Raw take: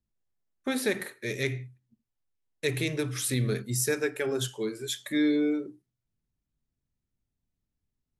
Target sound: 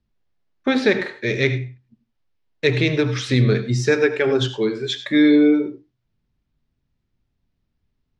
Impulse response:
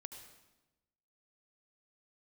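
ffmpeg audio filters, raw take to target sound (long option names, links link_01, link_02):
-filter_complex "[0:a]lowpass=frequency=5900:width=0.5412,lowpass=frequency=5900:width=1.3066,asplit=2[link_01][link_02];[1:a]atrim=start_sample=2205,afade=type=out:start_time=0.16:duration=0.01,atrim=end_sample=7497,lowpass=5400[link_03];[link_02][link_03]afir=irnorm=-1:irlink=0,volume=8.5dB[link_04];[link_01][link_04]amix=inputs=2:normalize=0,volume=3.5dB"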